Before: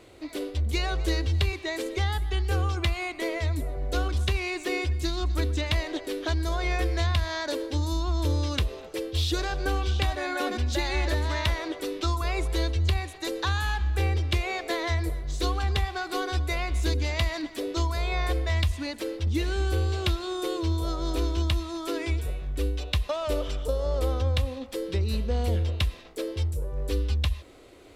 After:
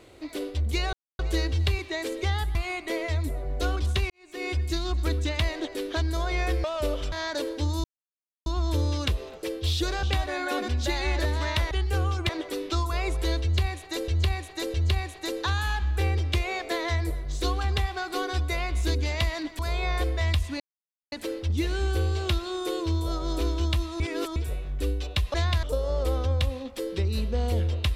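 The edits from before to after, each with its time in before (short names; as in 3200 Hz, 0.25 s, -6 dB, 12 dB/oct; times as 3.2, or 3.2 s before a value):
0.93 insert silence 0.26 s
2.29–2.87 move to 11.6
4.42–4.84 fade in quadratic
6.96–7.25 swap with 23.11–23.59
7.97 insert silence 0.62 s
9.54–9.92 cut
12.73–13.39 loop, 3 plays
17.58–17.88 cut
18.89 insert silence 0.52 s
21.77–22.13 reverse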